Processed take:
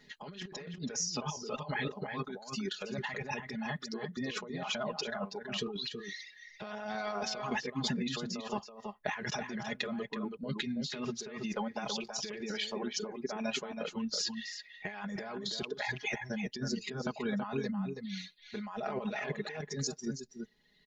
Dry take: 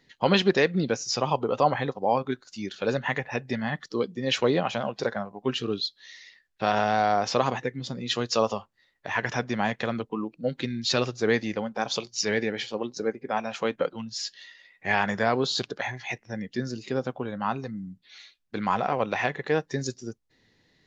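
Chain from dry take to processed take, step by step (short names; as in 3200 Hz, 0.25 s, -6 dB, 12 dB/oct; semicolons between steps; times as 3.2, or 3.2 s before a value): reverb removal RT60 1.8 s; comb 4.8 ms, depth 89%; negative-ratio compressor -33 dBFS, ratio -1; outdoor echo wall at 56 m, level -6 dB; gain -5.5 dB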